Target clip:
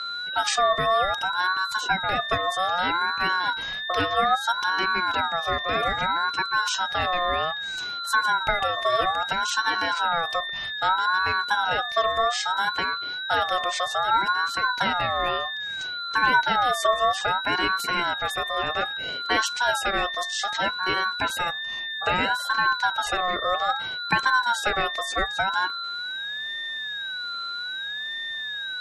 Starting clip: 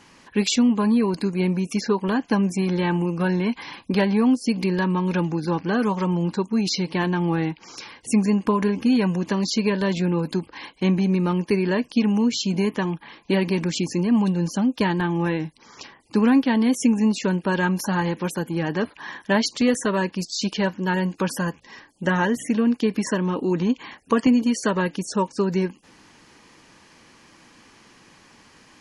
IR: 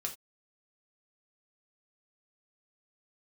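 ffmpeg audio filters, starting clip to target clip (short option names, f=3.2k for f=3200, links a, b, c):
-af "bandreject=f=50:t=h:w=6,bandreject=f=100:t=h:w=6,bandreject=f=150:t=h:w=6,bandreject=f=200:t=h:w=6,bandreject=f=250:t=h:w=6,bandreject=f=300:t=h:w=6,aeval=exprs='val(0)+0.0501*sin(2*PI*2700*n/s)':c=same,aeval=exprs='val(0)*sin(2*PI*1100*n/s+1100*0.2/0.62*sin(2*PI*0.62*n/s))':c=same"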